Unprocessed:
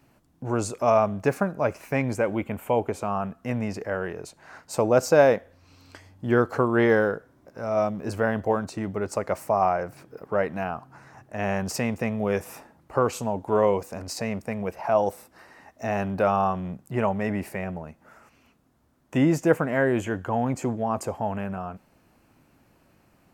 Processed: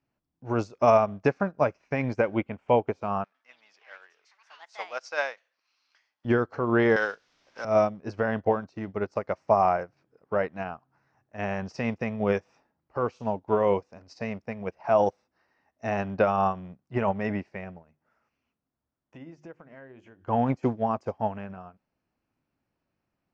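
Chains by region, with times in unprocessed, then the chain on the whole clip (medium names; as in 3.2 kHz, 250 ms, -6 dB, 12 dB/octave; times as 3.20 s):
3.24–6.25 s: companding laws mixed up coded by mu + high-pass 1.3 kHz + ever faster or slower copies 103 ms, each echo +5 st, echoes 2, each echo -6 dB
6.96–7.65 s: frequency weighting ITU-R 468 + word length cut 8-bit, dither triangular + three bands compressed up and down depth 70%
17.82–20.28 s: hum notches 50/100/150/200/250/300/350/400 Hz + compression 4:1, threshold -33 dBFS
whole clip: Chebyshev low-pass 5.7 kHz, order 4; peak limiter -15.5 dBFS; upward expansion 2.5:1, over -40 dBFS; trim +7 dB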